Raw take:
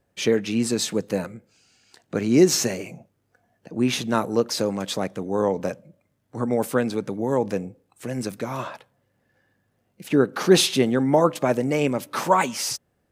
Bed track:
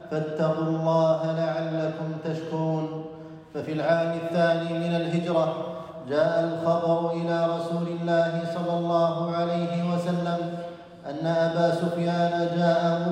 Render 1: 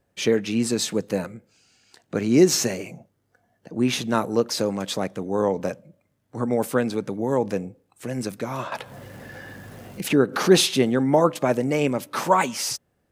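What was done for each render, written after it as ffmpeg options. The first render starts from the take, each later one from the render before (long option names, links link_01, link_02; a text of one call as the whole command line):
ffmpeg -i in.wav -filter_complex "[0:a]asettb=1/sr,asplit=3[link_01][link_02][link_03];[link_01]atrim=end=2.914[link_04];[link_02]atrim=start=2.91:end=3.85,asetpts=PTS-STARTPTS,afade=type=in:duration=0.004:curve=qsin,afade=type=out:start_time=0.936:duration=0.004:curve=qsin,bandreject=frequency=2500:width=11[link_05];[link_03]atrim=start=3.846[link_06];[link_04][link_05]acrossfade=duration=0.004:curve1=hsin:curve2=qsin[link_07];[link_07][link_06]acrossfade=duration=0.004:curve1=qsin:curve2=hsin,asettb=1/sr,asplit=3[link_08][link_09][link_10];[link_08]atrim=end=8.724[link_11];[link_09]atrim=start=8.72:end=10.58,asetpts=PTS-STARTPTS,afade=type=in:duration=0.004:curve=qsin,afade=type=out:start_time=1.856:duration=0.004:curve=qsin,acompressor=mode=upward:threshold=-17dB:ratio=2.5:attack=3.2:release=140:knee=2.83:detection=peak[link_12];[link_10]atrim=start=10.576[link_13];[link_11][link_12]acrossfade=duration=0.004:curve1=hsin:curve2=qsin[link_14];[link_14][link_13]acrossfade=duration=0.004:curve1=qsin:curve2=hsin" out.wav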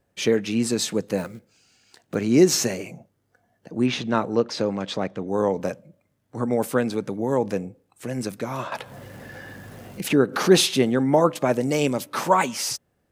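ffmpeg -i in.wav -filter_complex "[0:a]asettb=1/sr,asplit=3[link_01][link_02][link_03];[link_01]atrim=end=1.184[link_04];[link_02]atrim=start=1.18:end=2.15,asetpts=PTS-STARTPTS,afade=type=in:duration=0.004:curve=qsin,afade=type=out:start_time=0.966:duration=0.004:curve=qsin,acrusher=bits=5:mode=log:mix=0:aa=0.000001[link_05];[link_03]atrim=start=2.146[link_06];[link_04][link_05]acrossfade=duration=0.004:curve1=hsin:curve2=qsin[link_07];[link_07][link_06]acrossfade=duration=0.004:curve1=qsin:curve2=hsin,asettb=1/sr,asplit=3[link_08][link_09][link_10];[link_08]atrim=end=3.864[link_11];[link_09]atrim=start=3.86:end=5.28,asetpts=PTS-STARTPTS,afade=type=in:duration=0.004:curve=qsin,afade=type=out:start_time=1.416:duration=0.004:curve=qsin,lowpass=4400[link_12];[link_10]atrim=start=5.276[link_13];[link_11][link_12]acrossfade=duration=0.004:curve1=hsin:curve2=qsin[link_14];[link_14][link_13]acrossfade=duration=0.004:curve1=qsin:curve2=hsin,asettb=1/sr,asplit=3[link_15][link_16][link_17];[link_15]atrim=end=11.614[link_18];[link_16]atrim=start=11.61:end=12.03,asetpts=PTS-STARTPTS,afade=type=in:duration=0.004:curve=qsin,afade=type=out:start_time=0.416:duration=0.004:curve=qsin,highshelf=frequency=2900:width_type=q:width=1.5:gain=6[link_19];[link_17]atrim=start=12.026[link_20];[link_18][link_19]acrossfade=duration=0.004:curve1=hsin:curve2=qsin[link_21];[link_21][link_20]acrossfade=duration=0.004:curve1=qsin:curve2=hsin" out.wav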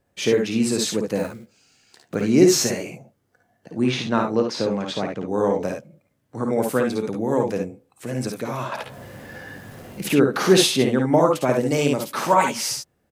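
ffmpeg -i in.wav -af "aecho=1:1:55|69:0.531|0.447" out.wav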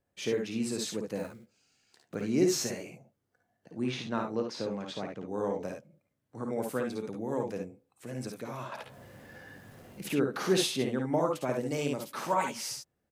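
ffmpeg -i in.wav -af "volume=-11.5dB" out.wav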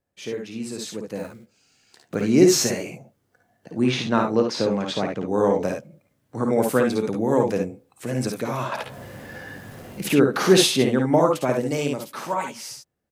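ffmpeg -i in.wav -af "dynaudnorm=framelen=180:gausssize=17:maxgain=13dB" out.wav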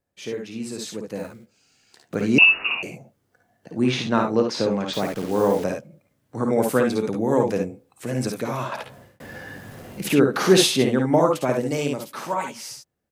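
ffmpeg -i in.wav -filter_complex "[0:a]asettb=1/sr,asplit=3[link_01][link_02][link_03];[link_01]atrim=end=2.384[link_04];[link_02]atrim=start=2.38:end=2.83,asetpts=PTS-STARTPTS,afade=type=in:duration=0.004:curve=qsin,afade=type=out:start_time=0.446:duration=0.004:curve=qsin,lowpass=frequency=2600:width_type=q:width=0.5098,lowpass=frequency=2600:width_type=q:width=0.6013,lowpass=frequency=2600:width_type=q:width=0.9,lowpass=frequency=2600:width_type=q:width=2.563,afreqshift=-3000[link_05];[link_03]atrim=start=2.826[link_06];[link_04][link_05]acrossfade=duration=0.004:curve1=hsin:curve2=qsin[link_07];[link_07][link_06]acrossfade=duration=0.004:curve1=qsin:curve2=hsin,asettb=1/sr,asplit=3[link_08][link_09][link_10];[link_08]atrim=end=4.934[link_11];[link_09]atrim=start=4.93:end=5.64,asetpts=PTS-STARTPTS,afade=type=in:duration=0.004:curve=qsin,afade=type=out:start_time=0.706:duration=0.004:curve=qsin,acrusher=bits=7:dc=4:mix=0:aa=0.000001[link_12];[link_10]atrim=start=5.636[link_13];[link_11][link_12]acrossfade=duration=0.004:curve1=hsin:curve2=qsin[link_14];[link_14][link_13]acrossfade=duration=0.004:curve1=qsin:curve2=hsin,asplit=2[link_15][link_16];[link_15]atrim=end=9.2,asetpts=PTS-STARTPTS,afade=type=out:start_time=8.42:duration=0.78:curve=qsin[link_17];[link_16]atrim=start=9.2,asetpts=PTS-STARTPTS,afade=type=in:duration=0.004:curve=hsin[link_18];[link_17][link_18]concat=n=2:v=0:a=1" out.wav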